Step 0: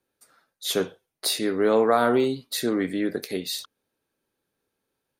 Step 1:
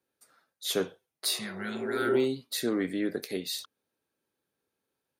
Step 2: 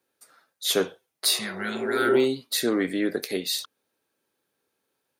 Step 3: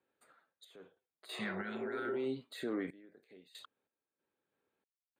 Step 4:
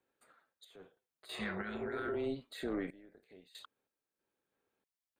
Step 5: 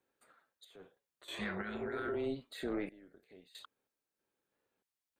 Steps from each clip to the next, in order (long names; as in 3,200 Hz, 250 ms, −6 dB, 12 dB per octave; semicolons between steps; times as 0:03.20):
low-shelf EQ 69 Hz −5.5 dB; healed spectral selection 0:01.27–0:02.14, 220–1,300 Hz both; high-pass filter 44 Hz; level −4 dB
low-shelf EQ 210 Hz −8 dB; level +7 dB
brickwall limiter −22 dBFS, peak gain reduction 11.5 dB; sample-and-hold tremolo 3.1 Hz, depth 100%; moving average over 8 samples; level −4 dB
amplitude modulation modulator 280 Hz, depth 30%; level +2 dB
wow of a warped record 33 1/3 rpm, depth 160 cents